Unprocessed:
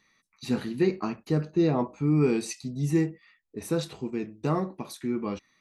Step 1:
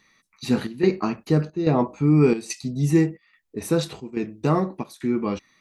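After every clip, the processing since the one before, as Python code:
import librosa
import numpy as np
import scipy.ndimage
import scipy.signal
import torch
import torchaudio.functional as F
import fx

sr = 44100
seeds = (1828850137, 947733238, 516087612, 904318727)

y = fx.chopper(x, sr, hz=1.2, depth_pct=65, duty_pct=80)
y = y * librosa.db_to_amplitude(6.0)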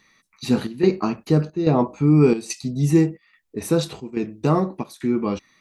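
y = fx.dynamic_eq(x, sr, hz=1900.0, q=2.2, threshold_db=-44.0, ratio=4.0, max_db=-5)
y = y * librosa.db_to_amplitude(2.0)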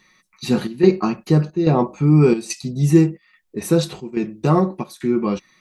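y = x + 0.43 * np.pad(x, (int(5.5 * sr / 1000.0), 0))[:len(x)]
y = y * librosa.db_to_amplitude(1.5)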